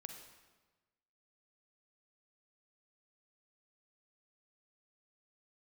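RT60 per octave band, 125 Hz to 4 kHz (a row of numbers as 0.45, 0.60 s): 1.5, 1.3, 1.3, 1.2, 1.1, 1.0 s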